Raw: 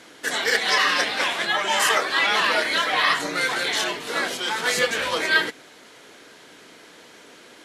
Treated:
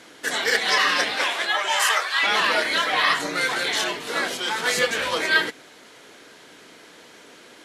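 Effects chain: 1.15–2.22 s: high-pass 250 Hz -> 1.1 kHz 12 dB/octave

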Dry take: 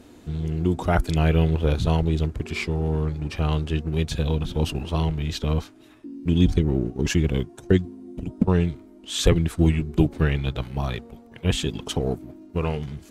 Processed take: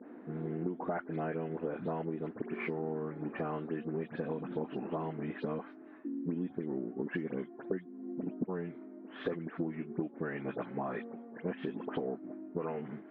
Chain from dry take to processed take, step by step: delay that grows with frequency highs late, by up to 126 ms; elliptic band-pass 210–1800 Hz, stop band 60 dB; compression 12:1, threshold -32 dBFS, peak gain reduction 17.5 dB

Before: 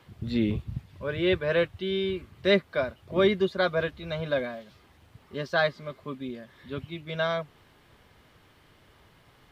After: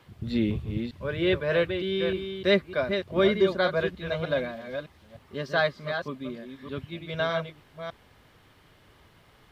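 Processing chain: chunks repeated in reverse 304 ms, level -7 dB

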